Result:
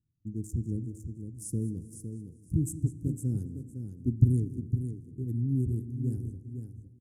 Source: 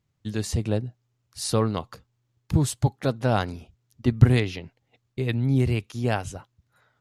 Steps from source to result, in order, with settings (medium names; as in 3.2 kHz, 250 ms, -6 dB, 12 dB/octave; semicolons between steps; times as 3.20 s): local Wiener filter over 25 samples; inverse Chebyshev band-stop 610–4300 Hz, stop band 40 dB; treble shelf 9.4 kHz +4 dB; feedback delay 508 ms, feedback 15%, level -8 dB; on a send at -14.5 dB: reverberation RT60 1.5 s, pre-delay 3 ms; on the sum: modulated delay 198 ms, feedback 48%, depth 115 cents, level -18 dB; trim -6 dB